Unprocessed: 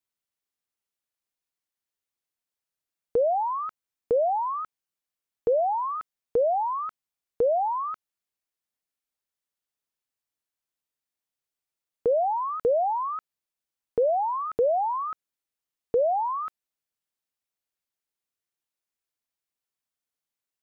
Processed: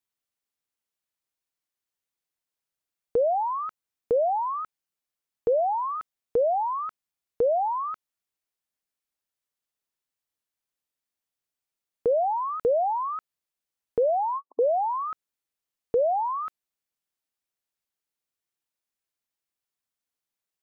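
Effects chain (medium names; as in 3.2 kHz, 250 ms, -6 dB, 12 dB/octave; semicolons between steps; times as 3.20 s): 14.20–14.62 s: brick-wall FIR band-pass 250–1100 Hz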